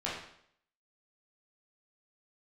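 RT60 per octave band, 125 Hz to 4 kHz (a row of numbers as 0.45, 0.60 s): 0.60, 0.65, 0.65, 0.65, 0.65, 0.60 s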